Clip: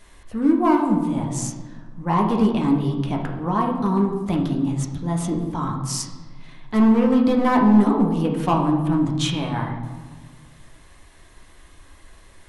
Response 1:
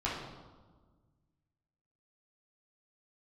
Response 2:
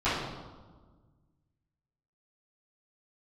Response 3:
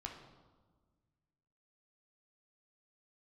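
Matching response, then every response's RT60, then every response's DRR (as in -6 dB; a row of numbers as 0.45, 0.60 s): 3; 1.4, 1.4, 1.5 s; -8.0, -17.5, 0.5 dB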